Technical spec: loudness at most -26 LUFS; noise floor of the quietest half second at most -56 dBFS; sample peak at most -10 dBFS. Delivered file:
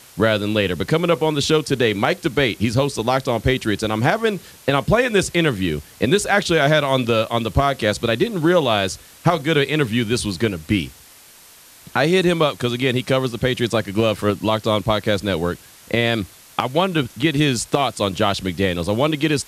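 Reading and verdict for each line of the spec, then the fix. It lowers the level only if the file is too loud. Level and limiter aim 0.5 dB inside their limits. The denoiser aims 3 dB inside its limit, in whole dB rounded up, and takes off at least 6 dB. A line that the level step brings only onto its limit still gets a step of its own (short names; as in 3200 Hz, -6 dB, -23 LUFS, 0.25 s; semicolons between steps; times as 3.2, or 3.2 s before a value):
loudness -19.5 LUFS: fail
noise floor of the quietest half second -46 dBFS: fail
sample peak -4.0 dBFS: fail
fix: denoiser 6 dB, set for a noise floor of -46 dBFS; gain -7 dB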